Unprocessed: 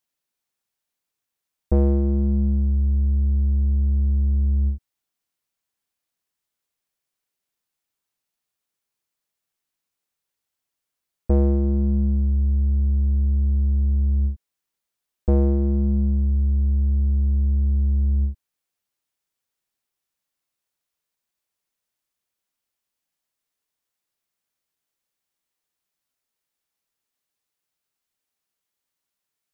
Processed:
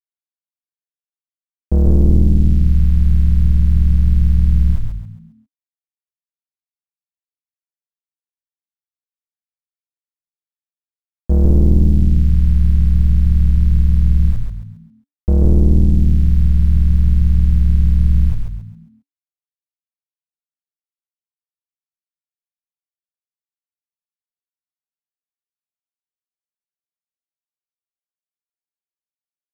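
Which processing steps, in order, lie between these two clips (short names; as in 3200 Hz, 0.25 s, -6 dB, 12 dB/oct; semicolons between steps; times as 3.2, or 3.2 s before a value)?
low shelf 230 Hz +10.5 dB; limiter -11 dBFS, peak gain reduction 6.5 dB; AM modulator 100 Hz, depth 45%; sample gate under -37 dBFS; on a send: frequency-shifting echo 0.135 s, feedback 38%, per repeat -58 Hz, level -3.5 dB; on the sum: gain +4 dB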